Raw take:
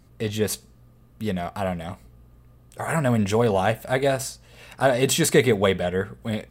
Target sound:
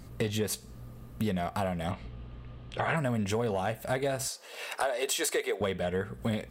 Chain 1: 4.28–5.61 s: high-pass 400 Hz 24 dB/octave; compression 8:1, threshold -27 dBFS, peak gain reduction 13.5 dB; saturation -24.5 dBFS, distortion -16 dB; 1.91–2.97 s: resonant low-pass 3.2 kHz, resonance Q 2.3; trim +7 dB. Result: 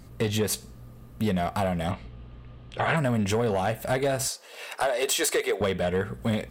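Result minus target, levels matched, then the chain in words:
compression: peak gain reduction -6 dB
4.28–5.61 s: high-pass 400 Hz 24 dB/octave; compression 8:1, threshold -34 dBFS, peak gain reduction 19.5 dB; saturation -24.5 dBFS, distortion -24 dB; 1.91–2.97 s: resonant low-pass 3.2 kHz, resonance Q 2.3; trim +7 dB

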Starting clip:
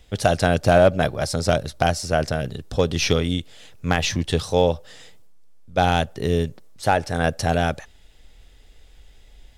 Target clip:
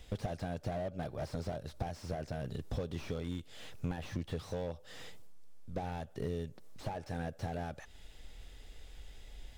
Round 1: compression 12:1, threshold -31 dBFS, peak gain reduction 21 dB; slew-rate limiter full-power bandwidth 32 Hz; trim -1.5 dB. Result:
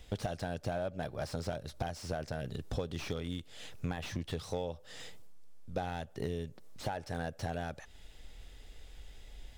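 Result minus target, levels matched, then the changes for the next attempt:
slew-rate limiter: distortion -6 dB
change: slew-rate limiter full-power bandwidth 13 Hz

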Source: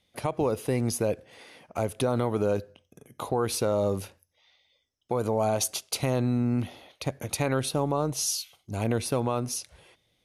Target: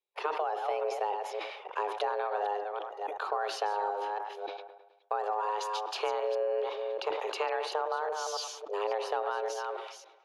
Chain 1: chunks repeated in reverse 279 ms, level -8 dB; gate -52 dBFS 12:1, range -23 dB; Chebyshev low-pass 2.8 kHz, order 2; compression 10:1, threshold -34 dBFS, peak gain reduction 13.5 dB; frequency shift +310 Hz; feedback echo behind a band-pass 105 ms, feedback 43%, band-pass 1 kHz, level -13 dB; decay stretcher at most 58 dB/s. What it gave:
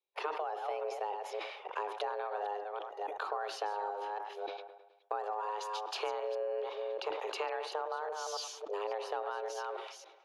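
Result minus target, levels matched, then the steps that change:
compression: peak gain reduction +5.5 dB
change: compression 10:1, threshold -28 dBFS, peak gain reduction 8.5 dB

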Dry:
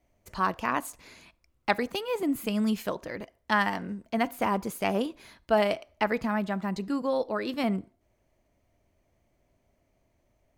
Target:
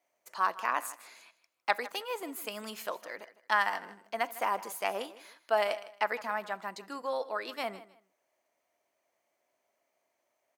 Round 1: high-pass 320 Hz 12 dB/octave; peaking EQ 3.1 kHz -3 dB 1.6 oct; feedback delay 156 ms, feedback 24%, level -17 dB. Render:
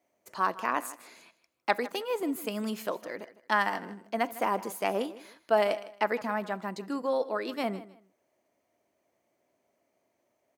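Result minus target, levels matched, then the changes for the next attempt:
250 Hz band +9.5 dB
change: high-pass 710 Hz 12 dB/octave

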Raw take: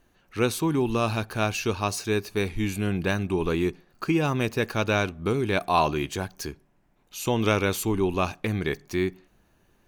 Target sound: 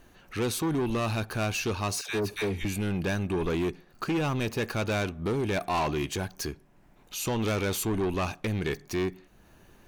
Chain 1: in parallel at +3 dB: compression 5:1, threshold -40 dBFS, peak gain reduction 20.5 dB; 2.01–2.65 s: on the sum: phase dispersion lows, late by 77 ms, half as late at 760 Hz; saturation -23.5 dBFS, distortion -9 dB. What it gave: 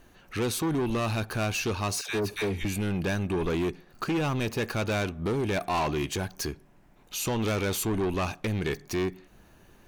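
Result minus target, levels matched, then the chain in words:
compression: peak gain reduction -7 dB
in parallel at +3 dB: compression 5:1, threshold -49 dBFS, peak gain reduction 27.5 dB; 2.01–2.65 s: on the sum: phase dispersion lows, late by 77 ms, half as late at 760 Hz; saturation -23.5 dBFS, distortion -10 dB

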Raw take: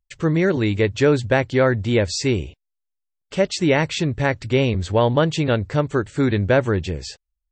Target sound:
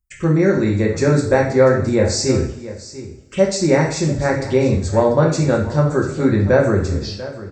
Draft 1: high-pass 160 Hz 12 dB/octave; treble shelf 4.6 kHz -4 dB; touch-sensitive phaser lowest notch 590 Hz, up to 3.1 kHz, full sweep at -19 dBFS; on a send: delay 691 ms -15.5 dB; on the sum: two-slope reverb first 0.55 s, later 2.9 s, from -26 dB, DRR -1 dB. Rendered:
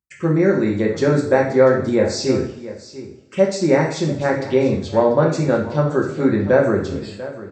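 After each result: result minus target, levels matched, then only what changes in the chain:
8 kHz band -6.0 dB; 125 Hz band -3.5 dB
change: treble shelf 4.6 kHz +6 dB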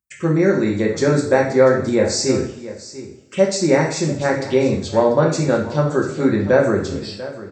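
125 Hz band -4.0 dB
remove: high-pass 160 Hz 12 dB/octave

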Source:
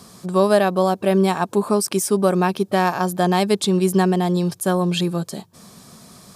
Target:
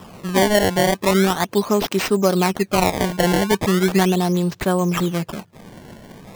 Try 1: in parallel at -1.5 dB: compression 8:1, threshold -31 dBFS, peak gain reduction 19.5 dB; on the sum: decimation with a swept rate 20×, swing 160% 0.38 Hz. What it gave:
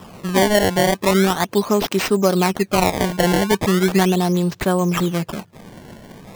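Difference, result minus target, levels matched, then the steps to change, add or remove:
compression: peak gain reduction -9 dB
change: compression 8:1, threshold -41.5 dBFS, peak gain reduction 29 dB

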